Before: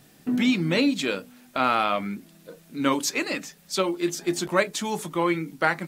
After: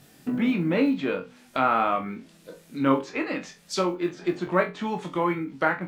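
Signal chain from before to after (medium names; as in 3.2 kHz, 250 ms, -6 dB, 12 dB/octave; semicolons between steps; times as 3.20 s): low-pass that closes with the level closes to 1.7 kHz, closed at -23 dBFS; short-mantissa float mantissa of 6-bit; flutter echo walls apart 3.8 m, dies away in 0.23 s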